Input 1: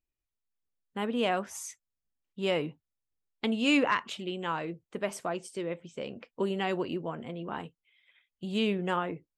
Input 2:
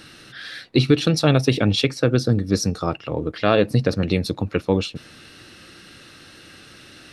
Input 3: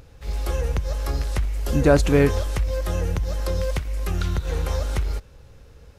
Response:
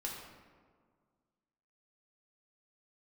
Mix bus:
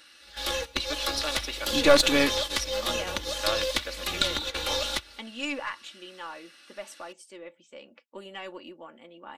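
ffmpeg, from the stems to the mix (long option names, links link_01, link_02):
-filter_complex "[0:a]adelay=1750,volume=-5.5dB[link_01];[1:a]lowshelf=frequency=450:gain=-9.5,acrossover=split=290|3000[link_02][link_03][link_04];[link_02]acompressor=threshold=-46dB:ratio=2[link_05];[link_05][link_03][link_04]amix=inputs=3:normalize=0,volume=-8.5dB,asplit=2[link_06][link_07];[2:a]equalizer=frequency=3700:width_type=o:width=0.8:gain=14,volume=0.5dB[link_08];[link_07]apad=whole_len=263829[link_09];[link_08][link_09]sidechaingate=range=-17dB:threshold=-47dB:ratio=16:detection=peak[link_10];[link_01][link_06][link_10]amix=inputs=3:normalize=0,highpass=frequency=730:poles=1,aecho=1:1:3.5:0.63,aeval=exprs='0.398*(cos(1*acos(clip(val(0)/0.398,-1,1)))-cos(1*PI/2))+0.112*(cos(2*acos(clip(val(0)/0.398,-1,1)))-cos(2*PI/2))+0.0141*(cos(6*acos(clip(val(0)/0.398,-1,1)))-cos(6*PI/2))':channel_layout=same"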